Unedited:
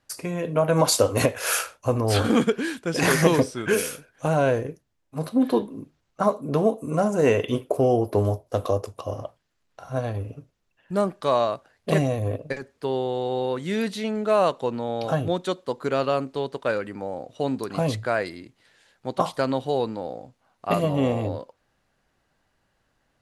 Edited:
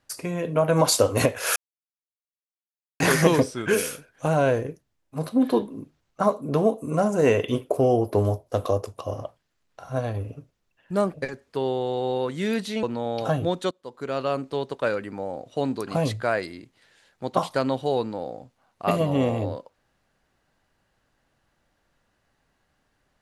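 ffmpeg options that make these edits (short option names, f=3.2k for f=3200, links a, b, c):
-filter_complex "[0:a]asplit=6[a][b][c][d][e][f];[a]atrim=end=1.56,asetpts=PTS-STARTPTS,afade=t=out:st=1.556:d=0.004:c=hsin[g];[b]atrim=start=1.56:end=3,asetpts=PTS-STARTPTS,volume=0[h];[c]atrim=start=3:end=11.142,asetpts=PTS-STARTPTS,afade=t=in:d=0.004:c=hsin[i];[d]atrim=start=12.418:end=14.112[j];[e]atrim=start=14.658:end=15.54,asetpts=PTS-STARTPTS,afade=t=out:st=0.878:d=0.004:c=hsin:silence=0.1[k];[f]atrim=start=15.54,asetpts=PTS-STARTPTS,afade=t=in:d=0.79:silence=0.1[l];[g][h][i]concat=n=3:v=0:a=1[m];[m][j]acrossfade=d=0.004:c1=hsin:c2=hsin[n];[k][l]concat=n=2:v=0:a=1[o];[n][o]acrossfade=d=0.004:c1=hsin:c2=hsin"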